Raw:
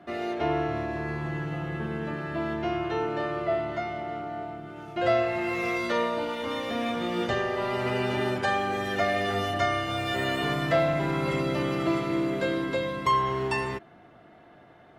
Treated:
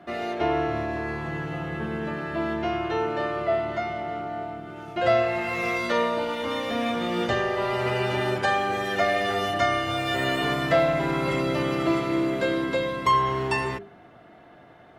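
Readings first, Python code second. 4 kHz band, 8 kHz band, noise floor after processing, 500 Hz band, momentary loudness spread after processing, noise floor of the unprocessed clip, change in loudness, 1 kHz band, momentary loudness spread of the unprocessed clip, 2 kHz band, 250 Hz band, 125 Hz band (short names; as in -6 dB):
+3.0 dB, +3.0 dB, -50 dBFS, +2.5 dB, 9 LU, -53 dBFS, +2.5 dB, +3.0 dB, 8 LU, +3.0 dB, +1.5 dB, +0.5 dB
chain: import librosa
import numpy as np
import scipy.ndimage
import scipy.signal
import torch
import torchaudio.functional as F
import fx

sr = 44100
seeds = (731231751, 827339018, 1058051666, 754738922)

y = fx.hum_notches(x, sr, base_hz=50, count=8)
y = y * librosa.db_to_amplitude(3.0)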